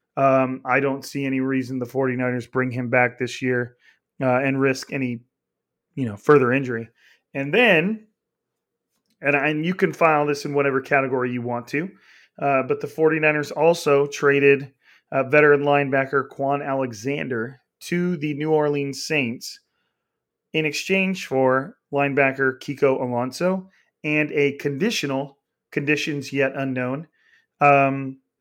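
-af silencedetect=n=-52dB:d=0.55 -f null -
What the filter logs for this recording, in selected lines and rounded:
silence_start: 5.22
silence_end: 5.96 | silence_duration: 0.74
silence_start: 8.05
silence_end: 9.10 | silence_duration: 1.05
silence_start: 19.58
silence_end: 20.54 | silence_duration: 0.95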